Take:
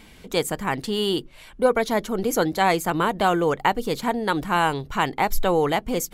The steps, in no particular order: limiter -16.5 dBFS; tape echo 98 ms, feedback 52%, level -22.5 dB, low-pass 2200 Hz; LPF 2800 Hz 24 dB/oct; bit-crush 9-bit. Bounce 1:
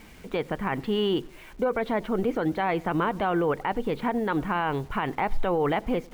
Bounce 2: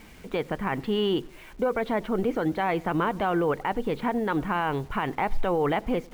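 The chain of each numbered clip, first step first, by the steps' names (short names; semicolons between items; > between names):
LPF > bit-crush > limiter > tape echo; LPF > limiter > bit-crush > tape echo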